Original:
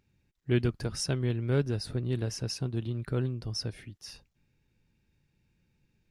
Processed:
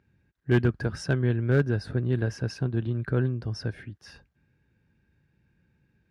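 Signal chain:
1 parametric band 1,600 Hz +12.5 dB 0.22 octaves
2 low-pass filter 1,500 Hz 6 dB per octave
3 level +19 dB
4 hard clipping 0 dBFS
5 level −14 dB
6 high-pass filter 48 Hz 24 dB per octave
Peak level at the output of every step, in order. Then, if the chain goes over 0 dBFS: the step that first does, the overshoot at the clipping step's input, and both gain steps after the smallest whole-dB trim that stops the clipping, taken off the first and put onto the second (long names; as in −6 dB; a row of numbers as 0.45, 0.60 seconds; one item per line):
−13.5, −14.5, +4.5, 0.0, −14.0, −9.5 dBFS
step 3, 4.5 dB
step 3 +14 dB, step 5 −9 dB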